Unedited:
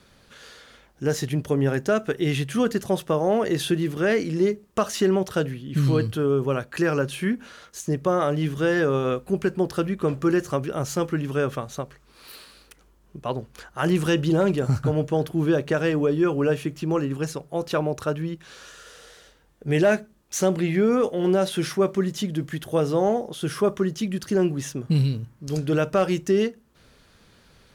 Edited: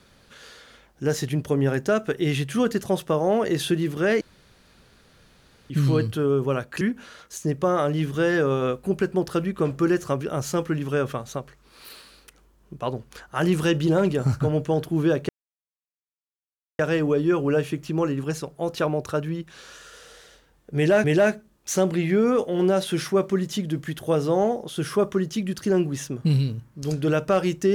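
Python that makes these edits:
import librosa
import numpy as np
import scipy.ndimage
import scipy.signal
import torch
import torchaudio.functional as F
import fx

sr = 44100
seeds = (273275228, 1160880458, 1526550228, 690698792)

y = fx.edit(x, sr, fx.room_tone_fill(start_s=4.21, length_s=1.49),
    fx.cut(start_s=6.81, length_s=0.43),
    fx.insert_silence(at_s=15.72, length_s=1.5),
    fx.repeat(start_s=19.69, length_s=0.28, count=2), tone=tone)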